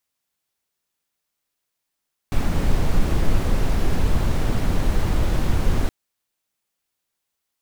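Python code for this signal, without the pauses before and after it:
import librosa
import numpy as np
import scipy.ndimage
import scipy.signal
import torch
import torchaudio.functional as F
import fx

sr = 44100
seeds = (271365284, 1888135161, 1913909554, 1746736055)

y = fx.noise_colour(sr, seeds[0], length_s=3.57, colour='brown', level_db=-17.0)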